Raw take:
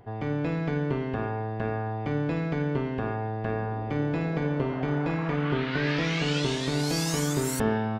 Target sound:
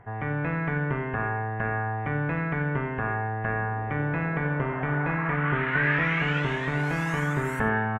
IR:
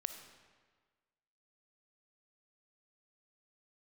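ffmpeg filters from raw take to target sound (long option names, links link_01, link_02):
-filter_complex "[0:a]firequalizer=gain_entry='entry(150,0);entry(290,-6);entry(1000,4);entry(1800,9);entry(4500,-24);entry(6400,-17)':delay=0.05:min_phase=1[link_01];[1:a]atrim=start_sample=2205,atrim=end_sample=3087,asetrate=29988,aresample=44100[link_02];[link_01][link_02]afir=irnorm=-1:irlink=0,volume=1dB"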